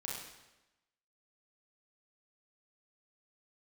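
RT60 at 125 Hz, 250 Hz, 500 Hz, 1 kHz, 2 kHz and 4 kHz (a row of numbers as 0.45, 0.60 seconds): 0.95, 1.0, 1.0, 1.0, 1.0, 0.90 seconds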